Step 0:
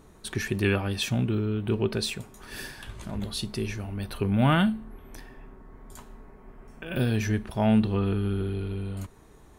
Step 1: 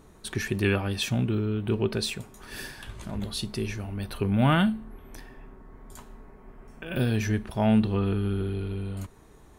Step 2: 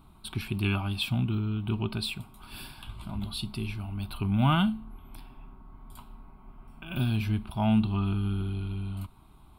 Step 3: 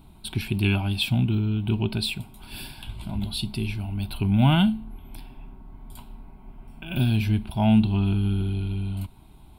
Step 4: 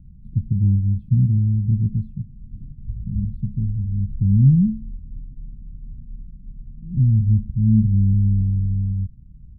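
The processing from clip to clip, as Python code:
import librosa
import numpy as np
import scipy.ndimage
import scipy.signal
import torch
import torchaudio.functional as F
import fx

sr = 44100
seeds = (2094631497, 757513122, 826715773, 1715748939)

y1 = x
y2 = fx.fixed_phaser(y1, sr, hz=1800.0, stages=6)
y3 = fx.peak_eq(y2, sr, hz=1200.0, db=-14.5, octaves=0.35)
y3 = y3 * 10.0 ** (5.5 / 20.0)
y4 = scipy.signal.sosfilt(scipy.signal.cheby2(4, 60, 620.0, 'lowpass', fs=sr, output='sos'), y3)
y4 = y4 * 10.0 ** (7.5 / 20.0)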